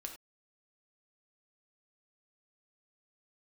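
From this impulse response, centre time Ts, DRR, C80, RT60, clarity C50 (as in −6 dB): 16 ms, 2.5 dB, 12.0 dB, non-exponential decay, 8.0 dB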